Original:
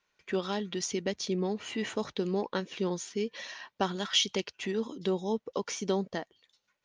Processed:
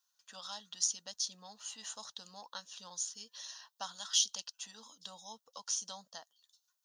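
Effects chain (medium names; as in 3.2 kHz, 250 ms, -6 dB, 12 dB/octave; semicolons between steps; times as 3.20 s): differentiator; static phaser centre 920 Hz, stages 4; trim +7 dB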